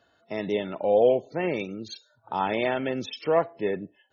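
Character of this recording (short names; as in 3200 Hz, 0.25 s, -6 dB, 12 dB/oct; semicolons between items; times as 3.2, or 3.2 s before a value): noise floor -67 dBFS; spectral tilt -4.0 dB/oct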